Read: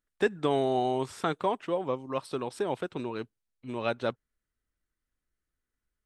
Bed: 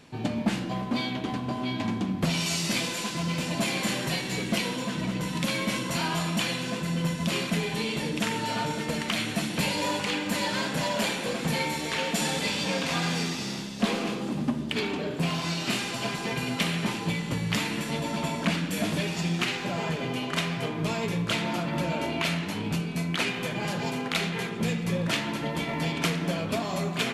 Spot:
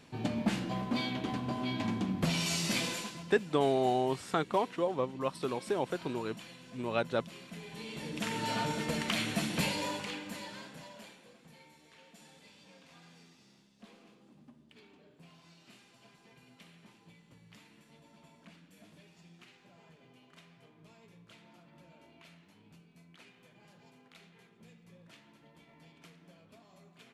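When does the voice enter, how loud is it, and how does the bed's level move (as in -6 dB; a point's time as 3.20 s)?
3.10 s, -1.5 dB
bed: 2.93 s -4.5 dB
3.37 s -21.5 dB
7.39 s -21.5 dB
8.48 s -4 dB
9.60 s -4 dB
11.43 s -30 dB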